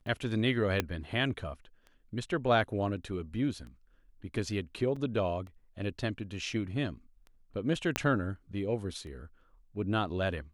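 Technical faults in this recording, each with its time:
tick 33 1/3 rpm -36 dBFS
0.8 pop -13 dBFS
4.96 gap 4.7 ms
7.96 pop -12 dBFS

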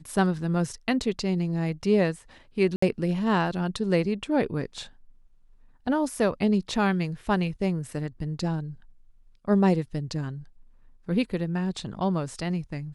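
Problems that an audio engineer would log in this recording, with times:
2.76–2.82 gap 64 ms

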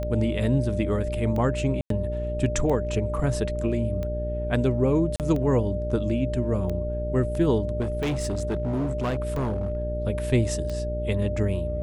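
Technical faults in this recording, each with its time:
hum 60 Hz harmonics 8 -30 dBFS
tick 45 rpm -20 dBFS
tone 600 Hz -30 dBFS
1.81–1.9 gap 93 ms
5.16–5.2 gap 38 ms
7.8–9.83 clipped -22.5 dBFS

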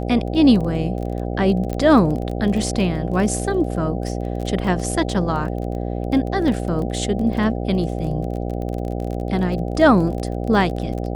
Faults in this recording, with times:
buzz 60 Hz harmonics 13 -25 dBFS
crackle 22/s -26 dBFS
1.73 pop -13 dBFS
6.48 gap 2.1 ms

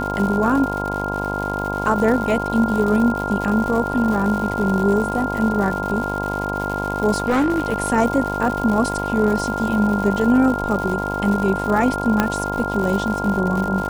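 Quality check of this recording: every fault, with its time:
buzz 50 Hz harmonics 21 -26 dBFS
crackle 210/s -25 dBFS
tone 1400 Hz -25 dBFS
7.24–7.8 clipped -13.5 dBFS
12.2 pop -3 dBFS

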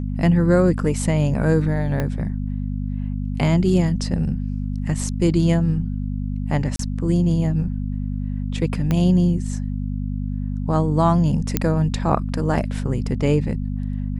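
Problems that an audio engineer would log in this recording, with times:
hum 50 Hz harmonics 5 -25 dBFS
2 pop -11 dBFS
6.76–6.79 gap 33 ms
8.91 pop -9 dBFS
11.57 pop -3 dBFS

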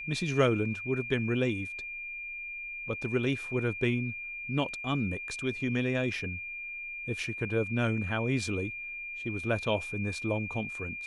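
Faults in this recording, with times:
tone 2400 Hz -37 dBFS

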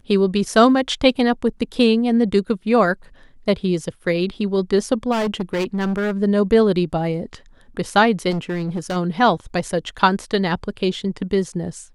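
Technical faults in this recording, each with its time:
5.11–6.12 clipped -18 dBFS
8.3–8.97 clipped -20 dBFS

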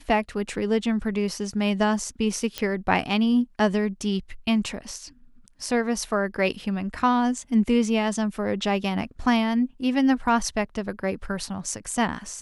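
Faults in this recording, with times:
2.58 pop -11 dBFS

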